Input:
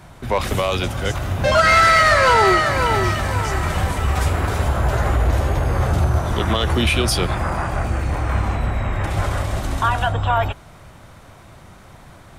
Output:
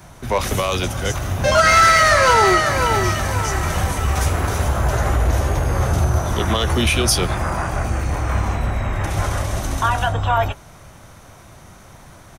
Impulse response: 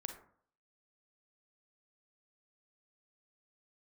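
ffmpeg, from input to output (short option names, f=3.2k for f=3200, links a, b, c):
-filter_complex "[0:a]equalizer=f=6.1k:t=o:w=0.34:g=10,acrossover=split=380|2200[a][b][c];[b]asplit=2[d][e];[e]adelay=22,volume=-11dB[f];[d][f]amix=inputs=2:normalize=0[g];[c]aexciter=amount=2.4:drive=3.2:freq=9.4k[h];[a][g][h]amix=inputs=3:normalize=0"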